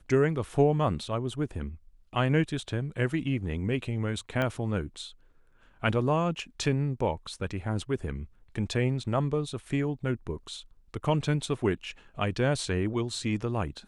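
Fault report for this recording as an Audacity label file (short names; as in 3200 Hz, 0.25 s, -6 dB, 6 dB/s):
4.420000	4.420000	pop -17 dBFS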